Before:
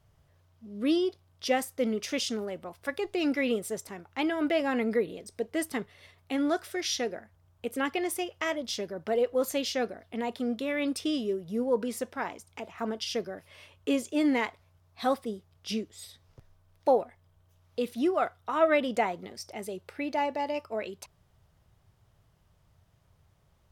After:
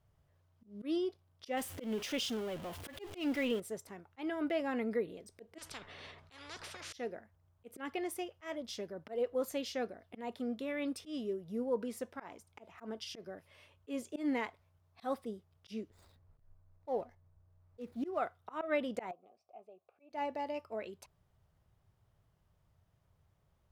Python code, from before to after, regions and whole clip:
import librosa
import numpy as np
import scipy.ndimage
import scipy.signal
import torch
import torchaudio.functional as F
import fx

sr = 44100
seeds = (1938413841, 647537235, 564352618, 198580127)

y = fx.chain(x, sr, fx.zero_step(step_db=-34.5),
    fx.peak_eq(hz=3100.0, db=7.0, octaves=0.41), at=(1.57, 3.6))
y = fx.chain(y, sr, fx.lowpass(hz=4800.0, slope=12),
    fx.spectral_comp(ratio=10.0), at=(5.58, 6.93))
y = fx.chain(y, sr, fx.median_filter(points=15),
    fx.low_shelf(hz=99.0, db=8.5), at=(15.9, 18.18))
y = fx.chain(y, sr, fx.vowel_filter(vowel='a'),
    fx.tilt_shelf(db=5.0, hz=840.0), at=(19.11, 20.1))
y = fx.high_shelf(y, sr, hz=7300.0, db=6.5)
y = fx.auto_swell(y, sr, attack_ms=128.0)
y = fx.high_shelf(y, sr, hz=3400.0, db=-8.5)
y = y * librosa.db_to_amplitude(-7.0)